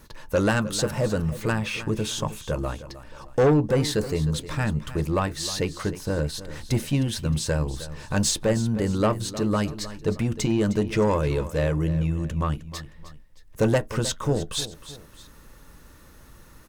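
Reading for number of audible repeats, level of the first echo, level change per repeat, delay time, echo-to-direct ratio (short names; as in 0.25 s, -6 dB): 2, -14.5 dB, -7.5 dB, 0.31 s, -14.0 dB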